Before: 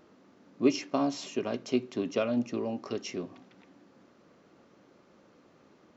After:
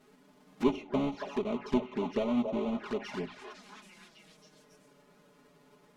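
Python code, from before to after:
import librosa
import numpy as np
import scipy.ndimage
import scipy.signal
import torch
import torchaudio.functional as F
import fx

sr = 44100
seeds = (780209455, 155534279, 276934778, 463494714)

p1 = fx.halfwave_hold(x, sr)
p2 = p1 + 0.64 * np.pad(p1, (int(4.8 * sr / 1000.0), 0))[:len(p1)]
p3 = p2 + fx.echo_stepped(p2, sr, ms=276, hz=700.0, octaves=0.7, feedback_pct=70, wet_db=-3.0, dry=0)
p4 = fx.env_lowpass_down(p3, sr, base_hz=2200.0, full_db=-23.0)
p5 = np.clip(10.0 ** (26.0 / 20.0) * p4, -1.0, 1.0) / 10.0 ** (26.0 / 20.0)
p6 = p4 + F.gain(torch.from_numpy(p5), -10.0).numpy()
p7 = fx.env_flanger(p6, sr, rest_ms=8.2, full_db=-22.0)
y = F.gain(torch.from_numpy(p7), -7.0).numpy()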